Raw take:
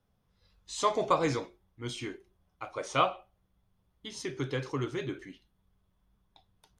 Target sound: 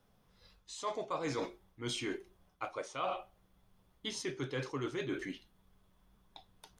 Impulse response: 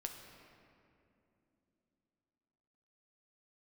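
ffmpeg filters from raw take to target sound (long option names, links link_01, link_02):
-af "equalizer=frequency=75:width_type=o:width=1.9:gain=-7.5,areverse,acompressor=threshold=-41dB:ratio=12,areverse,volume=7dB"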